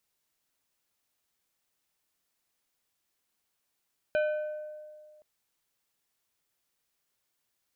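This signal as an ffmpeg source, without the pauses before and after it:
ffmpeg -f lavfi -i "aevalsrc='0.0708*pow(10,-3*t/1.98)*sin(2*PI*608*t)+0.0282*pow(10,-3*t/1.043)*sin(2*PI*1520*t)+0.0112*pow(10,-3*t/0.75)*sin(2*PI*2432*t)+0.00447*pow(10,-3*t/0.642)*sin(2*PI*3040*t)+0.00178*pow(10,-3*t/0.534)*sin(2*PI*3952*t)':duration=1.07:sample_rate=44100" out.wav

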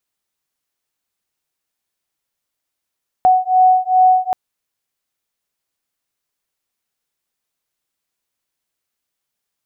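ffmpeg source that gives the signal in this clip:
ffmpeg -f lavfi -i "aevalsrc='0.237*(sin(2*PI*741*t)+sin(2*PI*743.5*t))':duration=1.08:sample_rate=44100" out.wav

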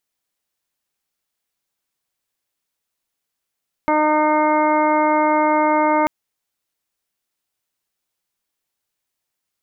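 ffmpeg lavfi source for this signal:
ffmpeg -f lavfi -i "aevalsrc='0.1*sin(2*PI*305*t)+0.106*sin(2*PI*610*t)+0.141*sin(2*PI*915*t)+0.0631*sin(2*PI*1220*t)+0.0282*sin(2*PI*1525*t)+0.0119*sin(2*PI*1830*t)+0.0473*sin(2*PI*2135*t)':duration=2.19:sample_rate=44100" out.wav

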